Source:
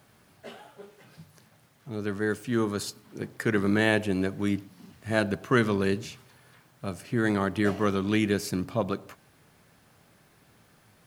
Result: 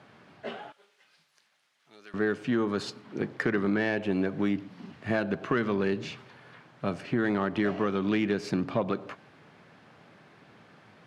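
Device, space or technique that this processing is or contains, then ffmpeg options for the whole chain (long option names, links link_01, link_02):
AM radio: -filter_complex "[0:a]highpass=150,lowpass=3300,acompressor=threshold=-29dB:ratio=5,asoftclip=type=tanh:threshold=-21.5dB,asettb=1/sr,asplit=3[link_01][link_02][link_03];[link_01]atrim=end=0.724[link_04];[link_02]atrim=start=0.72:end=2.14,asetpts=PTS-STARTPTS,afade=type=in:duration=0.004:curve=qsin,afade=type=out:start_time=1.416:duration=0.004:curve=qsin,aderivative[link_05];[link_03]atrim=start=2.136[link_06];[link_04][link_05]acrossfade=duration=0.004:curve1=hsin:curve2=qsin[link_07];[link_07][link_06]acrossfade=duration=0.004:curve1=qsin:curve2=hsin,volume=6.5dB"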